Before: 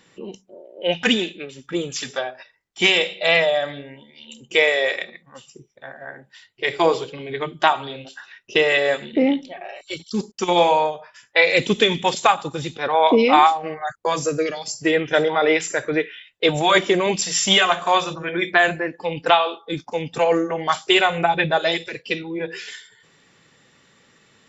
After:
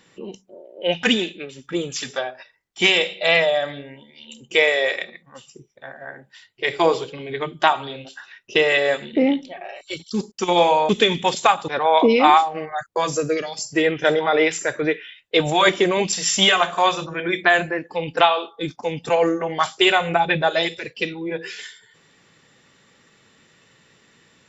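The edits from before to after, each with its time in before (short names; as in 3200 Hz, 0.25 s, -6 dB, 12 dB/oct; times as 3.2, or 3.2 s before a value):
10.89–11.69 cut
12.48–12.77 cut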